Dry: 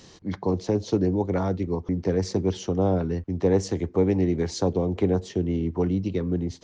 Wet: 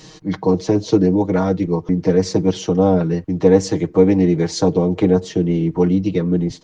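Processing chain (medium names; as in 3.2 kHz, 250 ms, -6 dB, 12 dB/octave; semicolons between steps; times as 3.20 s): comb 6.4 ms, depth 91%; trim +5.5 dB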